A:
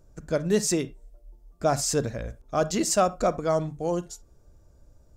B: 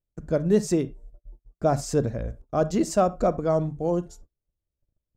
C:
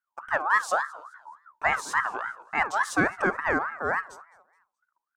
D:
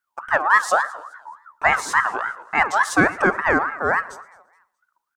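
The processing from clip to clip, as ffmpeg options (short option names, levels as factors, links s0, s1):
-af "agate=range=0.02:threshold=0.00447:ratio=16:detection=peak,tiltshelf=f=1200:g=6.5,volume=0.75"
-af "aecho=1:1:212|424|636:0.075|0.0285|0.0108,aeval=exprs='val(0)*sin(2*PI*1200*n/s+1200*0.25/3.5*sin(2*PI*3.5*n/s))':c=same"
-af "aecho=1:1:115|230|345:0.0794|0.031|0.0121,volume=2.24"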